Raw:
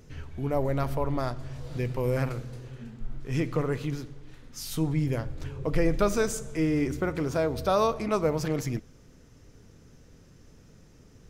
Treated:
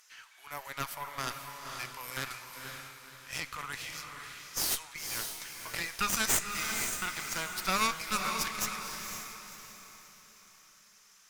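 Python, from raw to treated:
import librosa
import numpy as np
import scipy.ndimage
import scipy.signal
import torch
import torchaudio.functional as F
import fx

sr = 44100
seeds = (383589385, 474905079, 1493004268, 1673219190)

y = scipy.signal.sosfilt(scipy.signal.butter(4, 1100.0, 'highpass', fs=sr, output='sos'), x)
y = fx.high_shelf(y, sr, hz=4900.0, db=9.0)
y = fx.cheby_harmonics(y, sr, harmonics=(6,), levels_db=(-10,), full_scale_db=-12.5)
y = fx.echo_diffused(y, sr, ms=520, feedback_pct=40, wet_db=-5)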